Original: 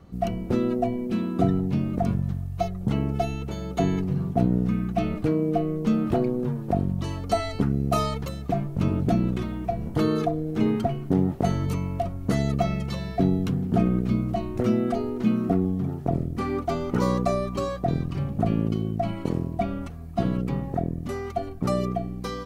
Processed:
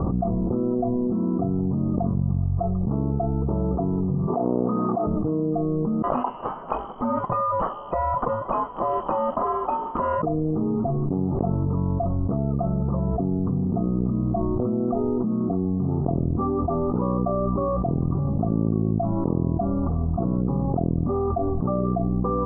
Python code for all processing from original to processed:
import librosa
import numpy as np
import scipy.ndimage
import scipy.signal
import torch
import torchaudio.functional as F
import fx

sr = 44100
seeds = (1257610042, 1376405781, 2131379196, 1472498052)

y = fx.chain(x, sr, fx.over_compress(threshold_db=-26.0, ratio=-1.0),
    fx.highpass(hz=490.0, slope=12),
    fx.doubler(ms=24.0, db=-7), at=(4.27, 5.07))
y = fx.chain(y, sr, fx.freq_invert(carrier_hz=3200),
    fx.peak_eq(hz=85.0, db=-15.0, octaves=0.75), at=(6.02, 10.23))
y = scipy.signal.sosfilt(scipy.signal.cheby1(6, 1.0, 1200.0, 'lowpass', fs=sr, output='sos'), y)
y = fx.env_flatten(y, sr, amount_pct=100)
y = F.gain(torch.from_numpy(y), -5.5).numpy()